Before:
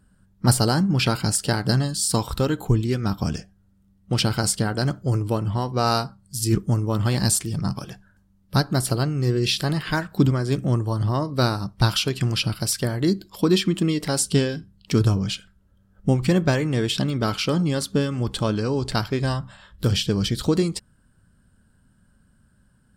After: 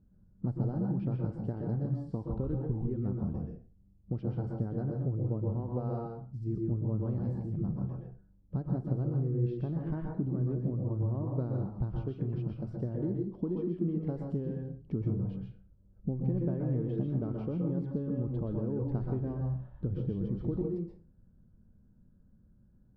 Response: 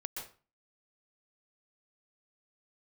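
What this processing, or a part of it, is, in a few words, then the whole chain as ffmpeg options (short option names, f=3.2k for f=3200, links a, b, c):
television next door: -filter_complex "[0:a]acompressor=threshold=-25dB:ratio=6,lowpass=470[a];[1:a]atrim=start_sample=2205[b];[a][b]afir=irnorm=-1:irlink=0,volume=-1.5dB"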